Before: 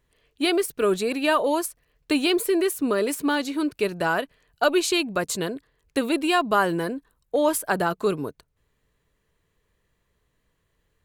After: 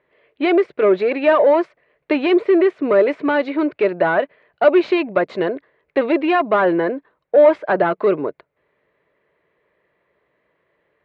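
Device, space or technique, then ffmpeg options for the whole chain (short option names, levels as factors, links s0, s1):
overdrive pedal into a guitar cabinet: -filter_complex "[0:a]asplit=2[s0][s1];[s1]highpass=f=720:p=1,volume=7.94,asoftclip=type=tanh:threshold=0.447[s2];[s0][s2]amix=inputs=2:normalize=0,lowpass=f=1000:p=1,volume=0.501,highpass=94,equalizer=f=100:t=q:w=4:g=-7,equalizer=f=230:t=q:w=4:g=-3,equalizer=f=360:t=q:w=4:g=5,equalizer=f=590:t=q:w=4:g=8,equalizer=f=2100:t=q:w=4:g=7,equalizer=f=3100:t=q:w=4:g=-3,lowpass=f=3600:w=0.5412,lowpass=f=3600:w=1.3066"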